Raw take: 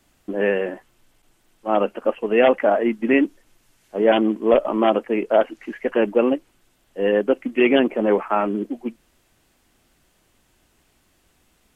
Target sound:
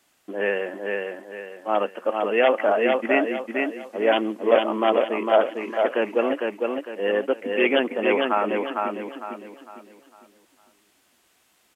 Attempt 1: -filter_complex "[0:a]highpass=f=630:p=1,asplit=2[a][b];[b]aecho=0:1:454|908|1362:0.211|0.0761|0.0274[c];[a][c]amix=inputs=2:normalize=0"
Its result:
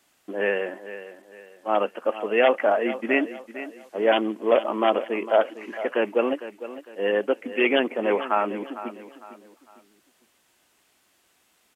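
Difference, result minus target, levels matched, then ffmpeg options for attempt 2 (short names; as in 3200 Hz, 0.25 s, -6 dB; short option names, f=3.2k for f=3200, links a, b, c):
echo-to-direct -10 dB
-filter_complex "[0:a]highpass=f=630:p=1,asplit=2[a][b];[b]aecho=0:1:454|908|1362|1816|2270:0.668|0.241|0.0866|0.0312|0.0112[c];[a][c]amix=inputs=2:normalize=0"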